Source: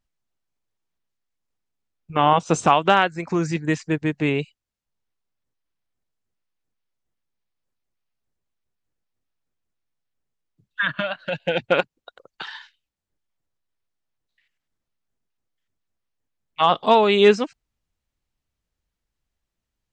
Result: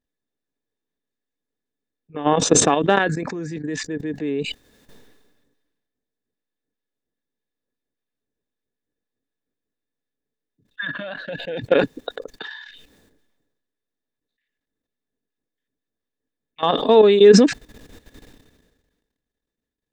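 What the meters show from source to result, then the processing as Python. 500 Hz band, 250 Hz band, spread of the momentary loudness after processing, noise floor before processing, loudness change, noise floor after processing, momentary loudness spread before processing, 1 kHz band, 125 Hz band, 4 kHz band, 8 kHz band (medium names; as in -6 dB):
+4.0 dB, +3.5 dB, 23 LU, -84 dBFS, +2.5 dB, -84 dBFS, 20 LU, -4.5 dB, 0.0 dB, +0.5 dB, +14.5 dB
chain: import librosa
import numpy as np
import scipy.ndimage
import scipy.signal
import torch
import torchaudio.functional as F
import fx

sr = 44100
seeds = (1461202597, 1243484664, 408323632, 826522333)

y = fx.level_steps(x, sr, step_db=16)
y = fx.small_body(y, sr, hz=(280.0, 430.0, 1700.0, 3600.0), ring_ms=30, db=15)
y = fx.sustainer(y, sr, db_per_s=40.0)
y = y * 10.0 ** (-5.0 / 20.0)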